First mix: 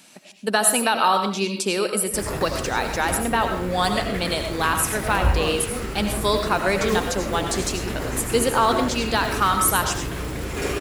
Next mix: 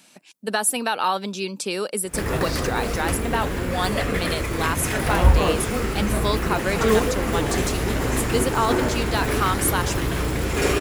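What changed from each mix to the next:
background +6.0 dB
reverb: off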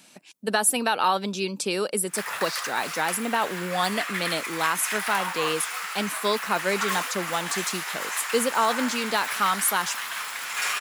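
background: add high-pass filter 1,000 Hz 24 dB per octave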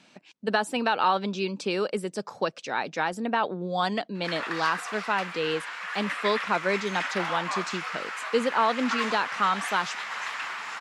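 background: entry +2.10 s
master: add high-frequency loss of the air 140 metres

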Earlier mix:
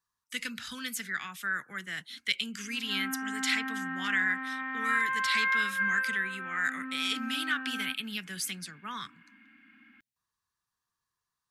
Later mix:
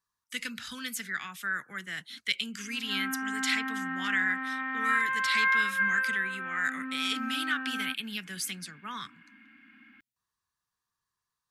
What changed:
background +4.0 dB
reverb: off

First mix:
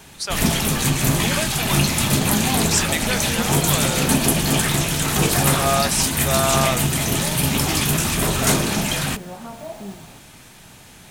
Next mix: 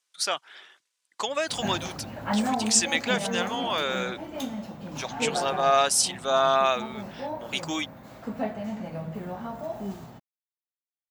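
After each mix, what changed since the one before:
first sound: muted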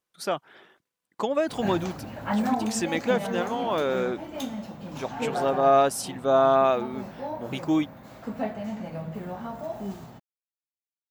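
speech: remove meter weighting curve ITU-R 468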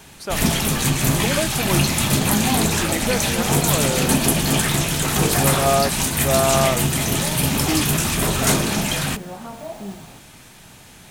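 first sound: unmuted
reverb: on, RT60 0.35 s

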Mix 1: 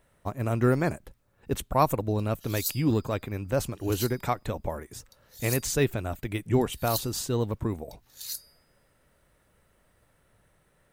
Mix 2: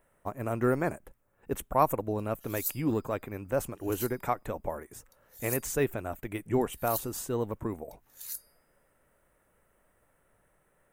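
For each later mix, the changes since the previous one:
speech: add parametric band 85 Hz −9 dB 2.9 octaves
master: add parametric band 4,300 Hz −13.5 dB 1.2 octaves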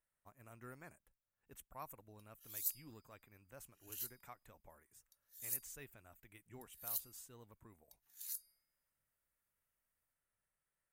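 speech −10.0 dB
master: add guitar amp tone stack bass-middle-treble 5-5-5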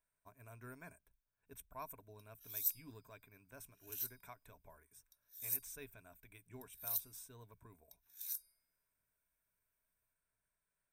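master: add EQ curve with evenly spaced ripples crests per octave 1.6, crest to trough 10 dB

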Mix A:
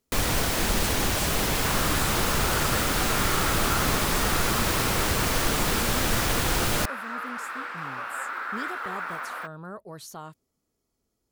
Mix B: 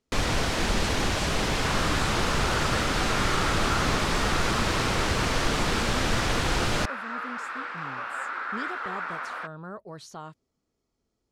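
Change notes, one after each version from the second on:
master: add low-pass filter 6,000 Hz 12 dB per octave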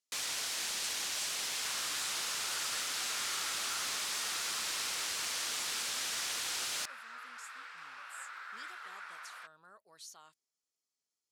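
master: add first difference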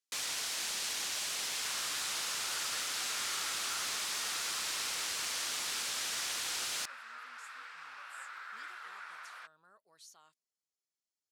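speech −5.5 dB

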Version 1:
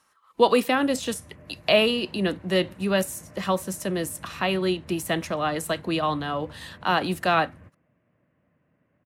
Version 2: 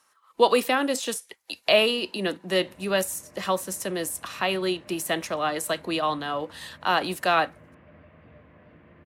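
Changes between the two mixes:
background: entry +1.85 s
master: add bass and treble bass −9 dB, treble +3 dB

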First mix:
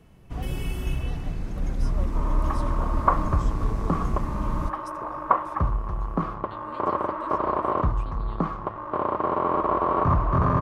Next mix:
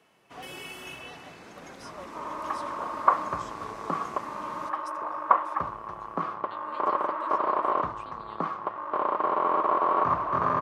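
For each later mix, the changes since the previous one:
first sound: add low-shelf EQ 230 Hz −8.5 dB
master: add meter weighting curve A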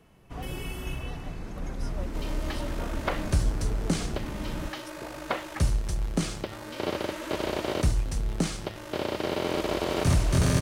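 second sound: remove low-pass with resonance 1,100 Hz, resonance Q 10
master: remove meter weighting curve A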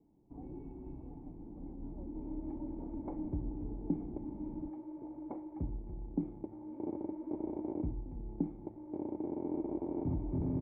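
master: add formant resonators in series u

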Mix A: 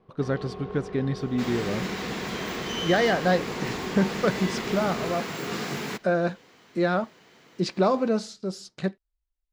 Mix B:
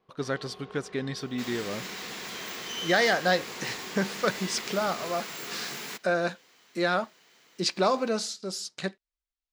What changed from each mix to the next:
first sound −7.0 dB
second sound −7.0 dB
master: add spectral tilt +3 dB per octave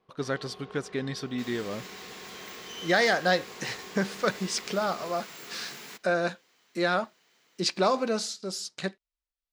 second sound −6.0 dB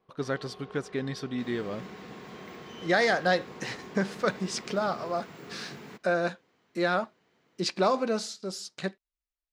second sound: add spectral tilt −3.5 dB per octave
master: add parametric band 12,000 Hz −4.5 dB 3 octaves

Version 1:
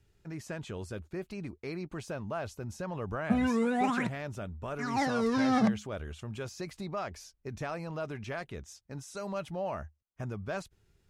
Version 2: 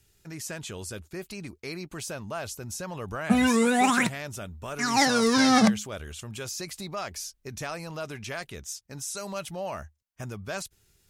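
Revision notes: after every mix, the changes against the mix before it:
background +5.5 dB
master: remove low-pass filter 1,300 Hz 6 dB per octave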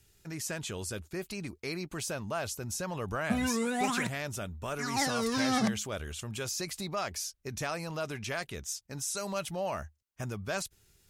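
background −9.0 dB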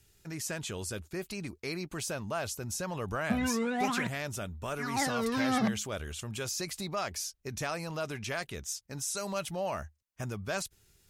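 background: add low-pass filter 3,400 Hz 12 dB per octave

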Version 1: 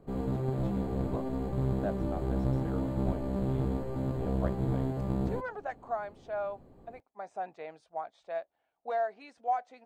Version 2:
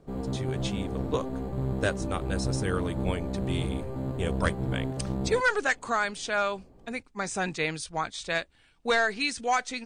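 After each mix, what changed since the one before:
speech: remove resonant band-pass 690 Hz, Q 4.6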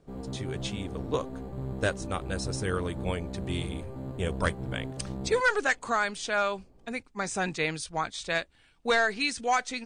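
background −5.5 dB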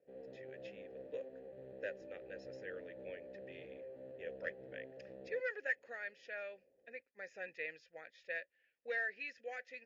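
speech: add Chebyshev low-pass with heavy ripple 7,000 Hz, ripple 9 dB
master: add formant filter e

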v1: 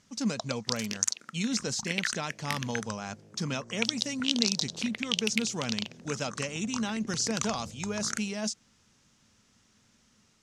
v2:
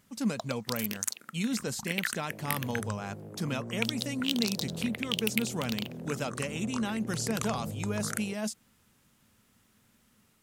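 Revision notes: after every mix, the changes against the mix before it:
second sound +11.5 dB
master: remove low-pass with resonance 6,000 Hz, resonance Q 2.7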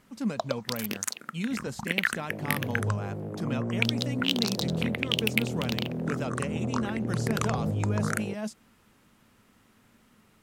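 first sound +8.5 dB
second sound +9.0 dB
master: add high-shelf EQ 3,900 Hz −10.5 dB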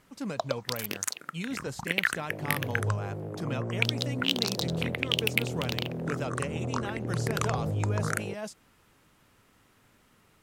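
master: add parametric band 220 Hz −10 dB 0.33 octaves

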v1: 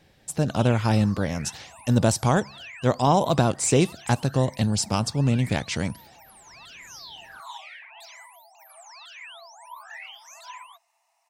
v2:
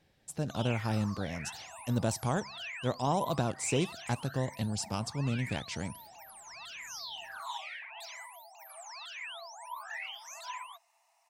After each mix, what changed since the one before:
speech −10.5 dB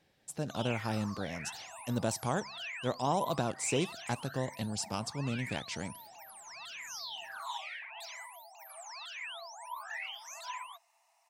master: add low-shelf EQ 110 Hz −10.5 dB

